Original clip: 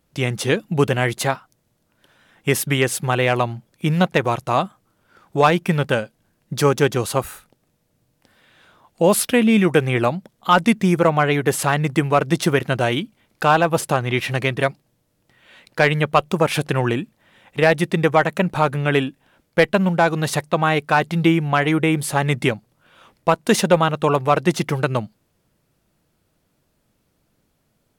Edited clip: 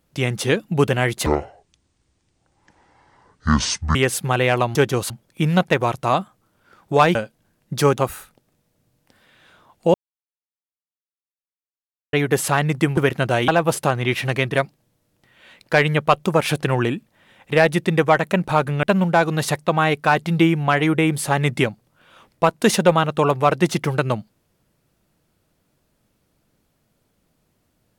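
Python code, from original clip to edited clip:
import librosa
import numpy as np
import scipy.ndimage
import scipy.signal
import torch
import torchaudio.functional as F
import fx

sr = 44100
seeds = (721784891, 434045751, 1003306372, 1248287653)

y = fx.edit(x, sr, fx.speed_span(start_s=1.26, length_s=1.48, speed=0.55),
    fx.cut(start_s=5.59, length_s=0.36),
    fx.move(start_s=6.78, length_s=0.35, to_s=3.54),
    fx.silence(start_s=9.09, length_s=2.19),
    fx.cut(start_s=12.12, length_s=0.35),
    fx.cut(start_s=12.98, length_s=0.56),
    fx.cut(start_s=18.89, length_s=0.79), tone=tone)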